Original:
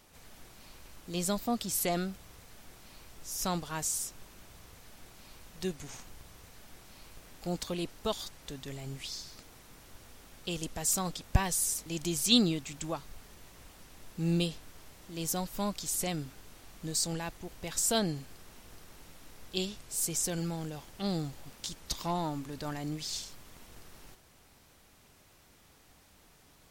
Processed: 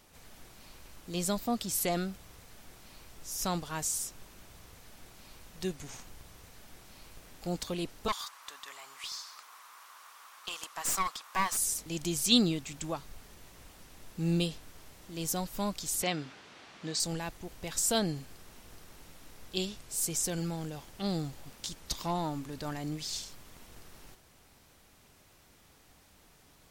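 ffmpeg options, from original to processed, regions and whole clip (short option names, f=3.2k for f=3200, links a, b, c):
-filter_complex "[0:a]asettb=1/sr,asplit=3[a][b][c];[a]atrim=end=8.084[d];[b]atrim=start=8.08:end=11.57,asetpts=PTS-STARTPTS,afade=t=in:d=0.004:c=qsin,afade=t=out:st=3.486:d=0.004:c=qsin,highpass=f=1.1k:t=q:w=4.8,aeval=exprs='clip(val(0),-1,0.0188)':c=same[e];[c]atrim=start=11.566[f];[d][e]acrossfade=d=0.004:c1=hsin:c2=qsin[g];[g][f]acrossfade=d=0.004:c1=qsin:c2=hsin,asettb=1/sr,asplit=3[h][i][j];[h]atrim=end=16.024[k];[i]atrim=start=16.02:end=17,asetpts=PTS-STARTPTS,afade=t=in:d=0.004:c=qsin,afade=t=out:st=0.976:d=0.004:c=qsin,highpass=160,lowpass=5k,equalizer=f=2.1k:w=0.32:g=6.5[l];[j]atrim=start=16.996[m];[k][l]acrossfade=d=0.004:c1=hsin:c2=qsin[n];[n][m]acrossfade=d=0.004:c1=qsin:c2=hsin"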